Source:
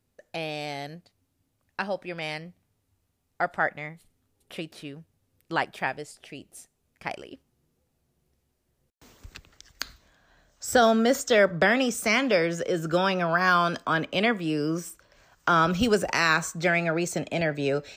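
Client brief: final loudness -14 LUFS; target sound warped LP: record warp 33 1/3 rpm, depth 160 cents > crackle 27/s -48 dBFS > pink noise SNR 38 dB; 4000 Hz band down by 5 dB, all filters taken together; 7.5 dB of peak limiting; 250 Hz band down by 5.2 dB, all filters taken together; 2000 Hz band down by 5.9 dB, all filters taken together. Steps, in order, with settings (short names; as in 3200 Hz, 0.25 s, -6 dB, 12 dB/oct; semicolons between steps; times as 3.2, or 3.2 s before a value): bell 250 Hz -7 dB; bell 2000 Hz -7 dB; bell 4000 Hz -4 dB; limiter -19 dBFS; record warp 33 1/3 rpm, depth 160 cents; crackle 27/s -48 dBFS; pink noise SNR 38 dB; gain +17 dB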